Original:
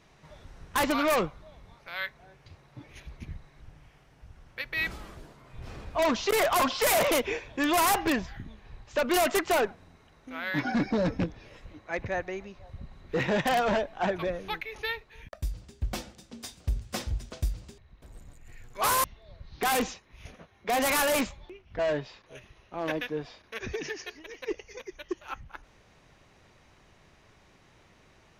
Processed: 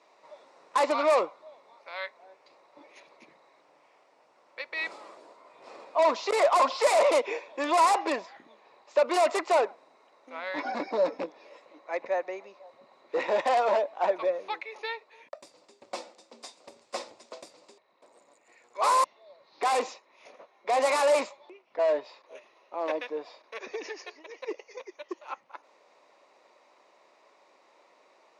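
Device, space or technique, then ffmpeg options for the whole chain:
phone speaker on a table: -af "highpass=frequency=350:width=0.5412,highpass=frequency=350:width=1.3066,equalizer=frequency=390:width_type=q:width=4:gain=-3,equalizer=frequency=570:width_type=q:width=4:gain=6,equalizer=frequency=990:width_type=q:width=4:gain=6,equalizer=frequency=1600:width_type=q:width=4:gain=-8,equalizer=frequency=3100:width_type=q:width=4:gain=-8,equalizer=frequency=6100:width_type=q:width=4:gain=-6,lowpass=frequency=7900:width=0.5412,lowpass=frequency=7900:width=1.3066"

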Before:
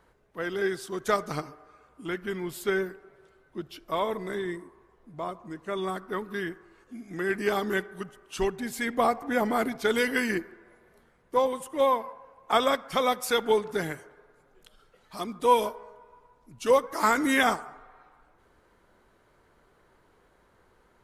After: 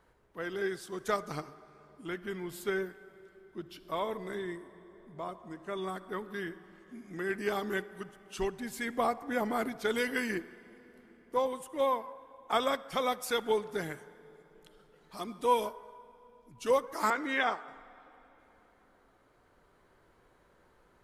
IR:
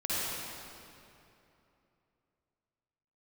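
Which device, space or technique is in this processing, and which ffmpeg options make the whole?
ducked reverb: -filter_complex "[0:a]asettb=1/sr,asplit=3[link_01][link_02][link_03];[link_01]atrim=end=17.104[link_04];[link_02]atrim=start=17.1:end=17.68,asetpts=PTS-STARTPTS,afade=type=in:duration=0.004:curve=qsin,afade=type=out:start_time=0.576:duration=0.004:curve=qsin,acrossover=split=320 4700:gain=0.224 1 0.0631[link_05][link_06][link_07];[link_05][link_06][link_07]amix=inputs=3:normalize=0[link_08];[link_03]atrim=start=17.676[link_09];[link_04][link_08]acrossfade=duration=0.004:curve1=hsin:curve2=qsin[link_10];[link_10][link_09]acrossfade=duration=0.004:curve1=qsin:curve2=hsin,asplit=3[link_11][link_12][link_13];[1:a]atrim=start_sample=2205[link_14];[link_12][link_14]afir=irnorm=-1:irlink=0[link_15];[link_13]apad=whole_len=927821[link_16];[link_15][link_16]sidechaincompress=threshold=-44dB:ratio=6:attack=41:release=1470,volume=-9dB[link_17];[link_11][link_17]amix=inputs=2:normalize=0,volume=-6dB"

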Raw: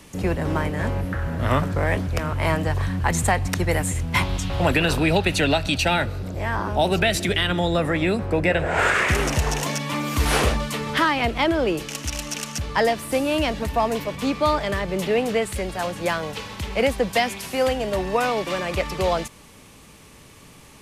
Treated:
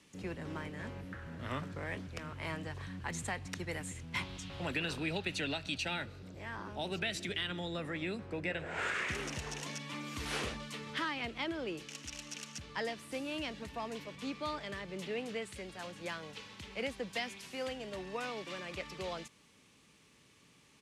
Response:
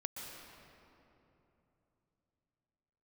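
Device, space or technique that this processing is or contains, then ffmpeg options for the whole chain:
piezo pickup straight into a mixer: -af "lowpass=5400,firequalizer=gain_entry='entry(140,0);entry(670,-17);entry(4800,-25)':delay=0.05:min_phase=1,aderivative,volume=16dB"

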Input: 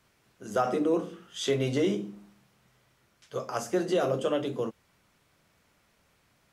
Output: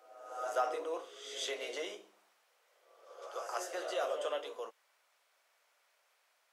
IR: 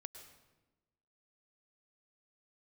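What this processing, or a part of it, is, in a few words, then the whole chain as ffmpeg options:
ghost voice: -filter_complex "[0:a]areverse[link_01];[1:a]atrim=start_sample=2205[link_02];[link_01][link_02]afir=irnorm=-1:irlink=0,areverse,highpass=frequency=560:width=0.5412,highpass=frequency=560:width=1.3066,volume=1dB"

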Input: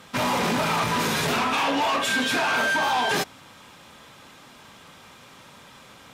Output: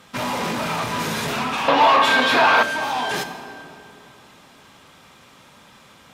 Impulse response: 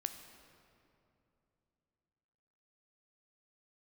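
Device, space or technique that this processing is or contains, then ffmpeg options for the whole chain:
stairwell: -filter_complex "[1:a]atrim=start_sample=2205[link_01];[0:a][link_01]afir=irnorm=-1:irlink=0,asettb=1/sr,asplit=3[link_02][link_03][link_04];[link_02]atrim=end=1.684[link_05];[link_03]atrim=start=1.68:end=2.63,asetpts=PTS-STARTPTS,afade=type=in:duration=0.004:curve=qsin,afade=type=out:start_time=0.946:duration=0.004:curve=qsin,equalizer=frequency=125:width_type=o:width=1:gain=3,equalizer=frequency=500:width_type=o:width=1:gain=8,equalizer=frequency=1000:width_type=o:width=1:gain=10,equalizer=frequency=2000:width_type=o:width=1:gain=5,equalizer=frequency=4000:width_type=o:width=1:gain=7,equalizer=frequency=8000:width_type=o:width=1:gain=-5[link_06];[link_04]atrim=start=2.626[link_07];[link_05][link_06]acrossfade=duration=0.004:curve1=hsin:curve2=qsin[link_08];[link_08][link_07]acrossfade=duration=0.004:curve1=qsin:curve2=hsin"

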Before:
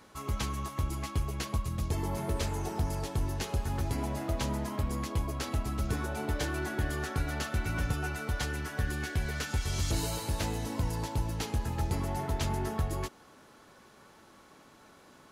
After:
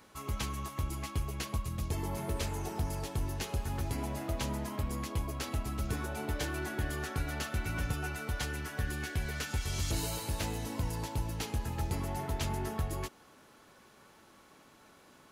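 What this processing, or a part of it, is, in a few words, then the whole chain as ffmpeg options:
presence and air boost: -af "equalizer=frequency=2600:width_type=o:width=0.77:gain=2.5,highshelf=frequency=11000:gain=6.5,volume=-3dB"

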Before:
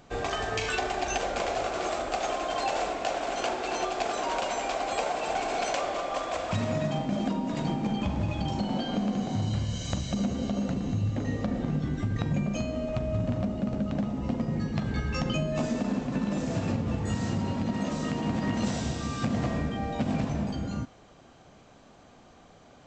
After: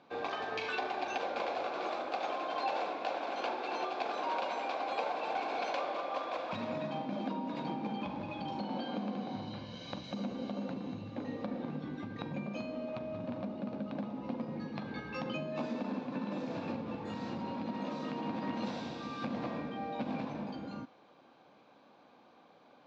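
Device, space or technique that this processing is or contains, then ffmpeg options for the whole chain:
phone earpiece: -filter_complex "[0:a]asettb=1/sr,asplit=3[link_01][link_02][link_03];[link_01]atrim=end=9.114[link_04];[link_02]atrim=start=9.11:end=10.04,asetpts=PTS-STARTPTS,afade=type=in:duration=0.004:curve=qsin,afade=type=out:start_time=0.926:duration=0.004:curve=qsin,lowpass=frequency=6200:width=0.5412,lowpass=frequency=6200:width=1.3066[link_05];[link_03]atrim=start=10.036[link_06];[link_04][link_05]acrossfade=duration=0.004:curve1=hsin:curve2=qsin[link_07];[link_07][link_06]acrossfade=duration=0.004:curve1=qsin:curve2=hsin,highpass=350,equalizer=frequency=400:width_type=q:width=4:gain=-7,equalizer=frequency=670:width_type=q:width=4:gain=-8,equalizer=frequency=1300:width_type=q:width=4:gain=-6,equalizer=frequency=1900:width_type=q:width=4:gain=-10,equalizer=frequency=3000:width_type=q:width=4:gain=-9,lowpass=frequency=3700:width=0.5412,lowpass=frequency=3700:width=1.3066"

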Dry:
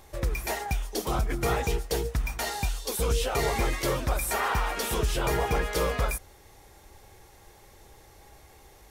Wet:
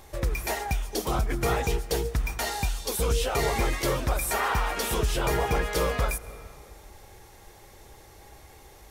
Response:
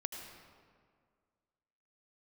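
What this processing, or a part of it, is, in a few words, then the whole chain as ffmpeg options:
ducked reverb: -filter_complex "[0:a]asplit=3[link_01][link_02][link_03];[1:a]atrim=start_sample=2205[link_04];[link_02][link_04]afir=irnorm=-1:irlink=0[link_05];[link_03]apad=whole_len=392571[link_06];[link_05][link_06]sidechaincompress=threshold=-37dB:ratio=3:attack=16:release=224,volume=-6.5dB[link_07];[link_01][link_07]amix=inputs=2:normalize=0"

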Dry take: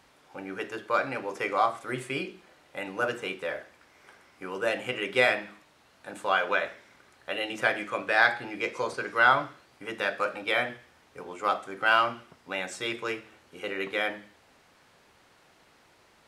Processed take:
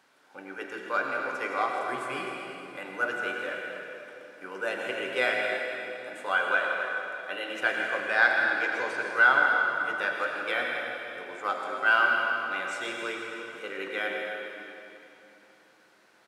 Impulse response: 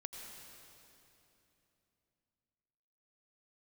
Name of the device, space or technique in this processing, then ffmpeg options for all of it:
stadium PA: -filter_complex "[0:a]highpass=210,equalizer=frequency=1500:width_type=o:width=0.24:gain=8,aecho=1:1:160.3|262.4:0.251|0.251[link_01];[1:a]atrim=start_sample=2205[link_02];[link_01][link_02]afir=irnorm=-1:irlink=0"

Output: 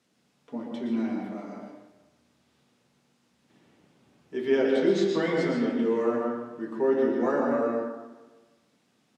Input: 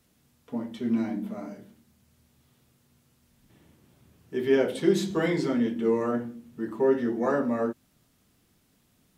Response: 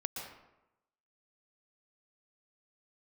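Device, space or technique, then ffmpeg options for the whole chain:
supermarket ceiling speaker: -filter_complex "[0:a]asettb=1/sr,asplit=3[link_01][link_02][link_03];[link_01]atrim=end=4.594[link_04];[link_02]atrim=start=4.59:end=5.21,asetpts=PTS-STARTPTS,afade=type=in:duration=0.004:curve=qsin,afade=type=out:start_time=0.616:duration=0.004:curve=qsin,lowpass=frequency=7100:width=0.5412,lowpass=frequency=7100:width=1.3066[link_05];[link_03]atrim=start=5.206[link_06];[link_04][link_05]acrossfade=duration=0.004:curve1=hsin:curve2=qsin[link_07];[link_07][link_06]acrossfade=duration=0.004:curve1=qsin:curve2=hsin,highpass=200,lowpass=6900[link_08];[1:a]atrim=start_sample=2205[link_09];[link_08][link_09]afir=irnorm=-1:irlink=0,aecho=1:1:152|304|456|608|760:0.126|0.0692|0.0381|0.0209|0.0115"

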